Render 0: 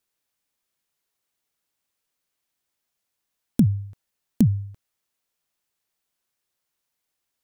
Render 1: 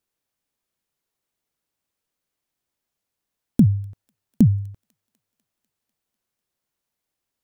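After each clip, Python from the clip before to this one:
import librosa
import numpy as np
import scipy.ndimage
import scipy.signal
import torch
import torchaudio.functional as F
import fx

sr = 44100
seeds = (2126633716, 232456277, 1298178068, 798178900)

y = fx.tilt_shelf(x, sr, db=3.5, hz=790.0)
y = fx.echo_wet_highpass(y, sr, ms=248, feedback_pct=65, hz=1500.0, wet_db=-22.5)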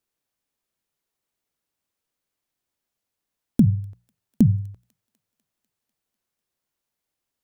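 y = fx.hum_notches(x, sr, base_hz=60, count=3)
y = y * librosa.db_to_amplitude(-1.0)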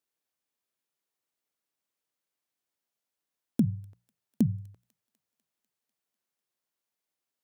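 y = fx.highpass(x, sr, hz=240.0, slope=6)
y = y * librosa.db_to_amplitude(-4.5)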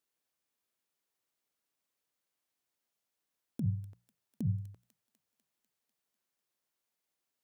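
y = fx.over_compress(x, sr, threshold_db=-28.0, ratio=-1.0)
y = y * librosa.db_to_amplitude(-2.5)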